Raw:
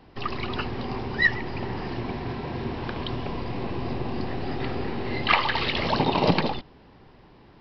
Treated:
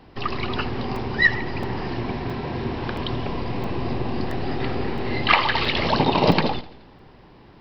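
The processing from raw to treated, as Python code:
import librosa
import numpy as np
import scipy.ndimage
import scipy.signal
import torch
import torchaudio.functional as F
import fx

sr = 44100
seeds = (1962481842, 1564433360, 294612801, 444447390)

y = fx.echo_feedback(x, sr, ms=85, feedback_pct=56, wet_db=-19.5)
y = fx.buffer_crackle(y, sr, first_s=0.96, period_s=0.67, block=128, kind='zero')
y = y * librosa.db_to_amplitude(3.5)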